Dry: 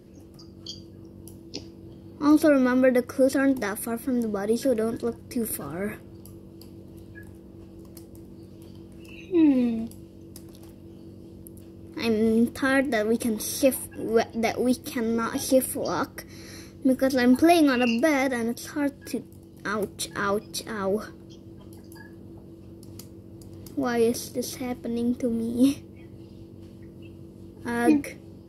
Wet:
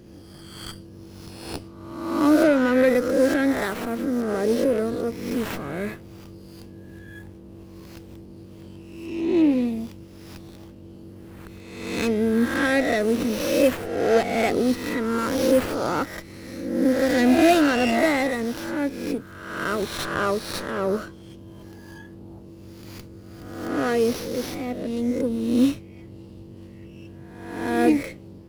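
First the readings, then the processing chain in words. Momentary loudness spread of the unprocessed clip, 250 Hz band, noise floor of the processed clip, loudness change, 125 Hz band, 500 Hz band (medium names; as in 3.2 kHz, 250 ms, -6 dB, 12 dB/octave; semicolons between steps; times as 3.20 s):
22 LU, +1.5 dB, -44 dBFS, +2.0 dB, +3.0 dB, +3.0 dB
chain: reverse spectral sustain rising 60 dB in 1.05 s; sliding maximum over 5 samples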